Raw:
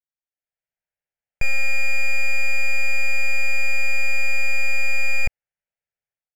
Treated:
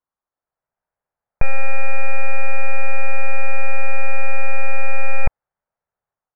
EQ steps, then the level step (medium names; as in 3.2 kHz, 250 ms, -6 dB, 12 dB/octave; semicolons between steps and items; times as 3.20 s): resonant low-pass 1.1 kHz, resonance Q 2.6; distance through air 63 m; +8.0 dB